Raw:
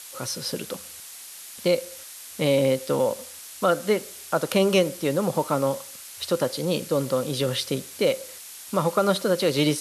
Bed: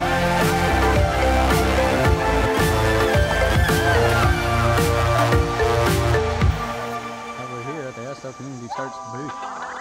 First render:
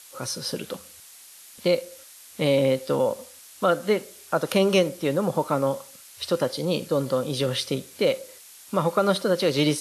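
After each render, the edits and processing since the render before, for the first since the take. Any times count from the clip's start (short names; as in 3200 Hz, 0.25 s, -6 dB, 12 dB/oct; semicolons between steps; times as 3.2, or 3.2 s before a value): noise print and reduce 6 dB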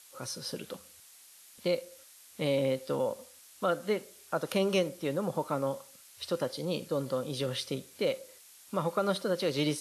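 gain -8 dB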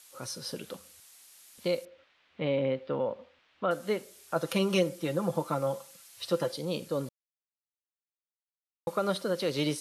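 1.85–3.71 LPF 3100 Hz 24 dB/oct; 4.35–6.56 comb 5.9 ms; 7.09–8.87 mute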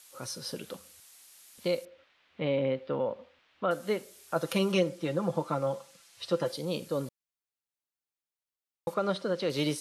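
4.72–6.46 air absorption 50 m; 8.94–9.5 air absorption 82 m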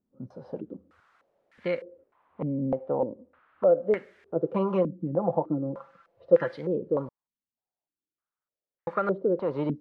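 stepped low-pass 3.3 Hz 230–1800 Hz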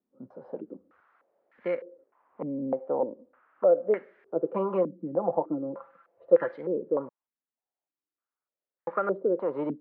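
three-band isolator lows -18 dB, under 220 Hz, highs -22 dB, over 2300 Hz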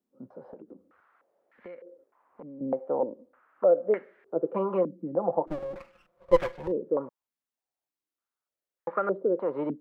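0.53–2.61 compressor 4:1, threshold -43 dBFS; 5.47–6.72 minimum comb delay 5.5 ms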